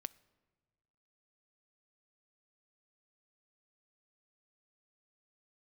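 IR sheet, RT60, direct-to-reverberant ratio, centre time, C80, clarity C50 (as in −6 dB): 1.5 s, 19.0 dB, 2 ms, 24.0 dB, 22.0 dB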